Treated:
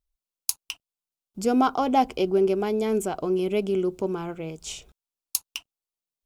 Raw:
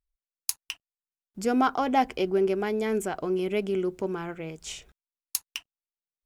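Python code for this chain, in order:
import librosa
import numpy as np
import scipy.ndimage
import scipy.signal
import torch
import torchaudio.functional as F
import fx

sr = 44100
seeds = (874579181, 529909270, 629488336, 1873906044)

y = fx.peak_eq(x, sr, hz=1800.0, db=-12.5, octaves=0.52)
y = y * librosa.db_to_amplitude(3.0)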